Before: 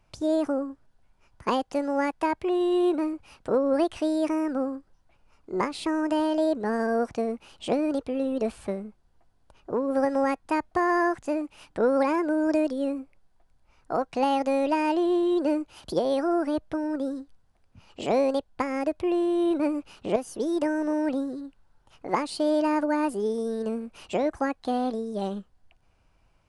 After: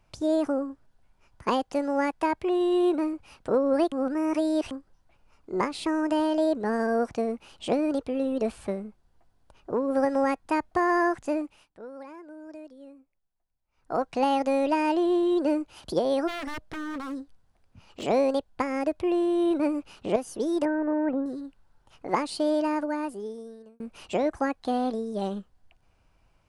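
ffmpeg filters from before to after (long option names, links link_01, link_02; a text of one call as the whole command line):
ffmpeg -i in.wav -filter_complex "[0:a]asplit=3[link_01][link_02][link_03];[link_01]afade=type=out:start_time=16.27:duration=0.02[link_04];[link_02]aeval=exprs='0.0355*(abs(mod(val(0)/0.0355+3,4)-2)-1)':channel_layout=same,afade=type=in:start_time=16.27:duration=0.02,afade=type=out:start_time=18.02:duration=0.02[link_05];[link_03]afade=type=in:start_time=18.02:duration=0.02[link_06];[link_04][link_05][link_06]amix=inputs=3:normalize=0,asettb=1/sr,asplit=3[link_07][link_08][link_09];[link_07]atrim=end=20.654[link_10];[link_08]atrim=start=20.65:end=21.26,asetpts=PTS-STARTPTS,afade=type=in:duration=0.004:curve=qsin,afade=type=out:start_time=0.606:duration=0.004:curve=qsin,lowpass=frequency=2000:width=0.5412,lowpass=frequency=2000:width=1.3066[link_11];[link_09]atrim=start=21.256[link_12];[link_10][link_11]acrossfade=duration=0.004:curve1=hsin:curve2=qsin[link_13];[link_13][link_12]acrossfade=duration=0.004:curve1=qsin:curve2=hsin,asplit=6[link_14][link_15][link_16][link_17][link_18][link_19];[link_14]atrim=end=3.922[link_20];[link_15]atrim=start=3.918:end=4.712,asetpts=PTS-STARTPTS,areverse[link_21];[link_16]atrim=start=4.708:end=11.68,asetpts=PTS-STARTPTS,afade=type=out:start_time=6.692:duration=0.28:silence=0.105925[link_22];[link_17]atrim=start=11.68:end=13.71,asetpts=PTS-STARTPTS,volume=-19.5dB[link_23];[link_18]atrim=start=13.71:end=23.8,asetpts=PTS-STARTPTS,afade=type=in:duration=0.28:silence=0.105925,afade=type=out:start_time=8.62:duration=1.47[link_24];[link_19]atrim=start=23.8,asetpts=PTS-STARTPTS,afade=type=in:duration=0.004:curve=hsin[link_25];[link_20][link_21]acrossfade=duration=0.004:curve1=hsin:curve2=hsin[link_26];[link_22][link_23][link_24][link_25]concat=n=4:v=0:a=1[link_27];[link_26][link_27]acrossfade=duration=0.004:curve1=hsin:curve2=hsin" out.wav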